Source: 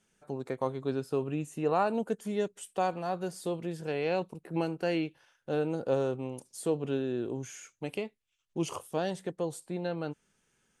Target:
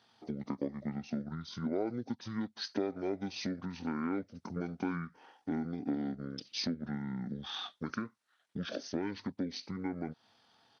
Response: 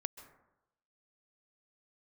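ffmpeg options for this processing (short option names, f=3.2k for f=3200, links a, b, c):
-af "asetrate=23361,aresample=44100,atempo=1.88775,acompressor=threshold=-39dB:ratio=4,highpass=220,volume=8dB"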